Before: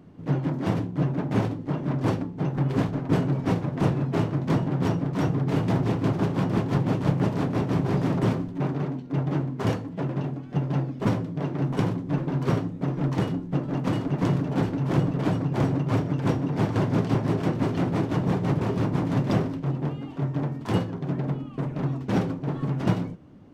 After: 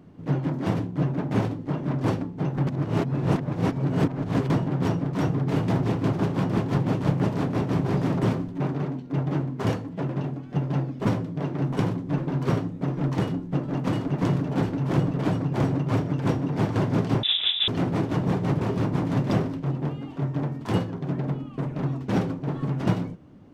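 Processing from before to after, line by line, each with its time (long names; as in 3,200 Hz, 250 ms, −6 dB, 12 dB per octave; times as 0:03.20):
0:02.67–0:04.50: reverse
0:17.23–0:17.68: voice inversion scrambler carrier 3,700 Hz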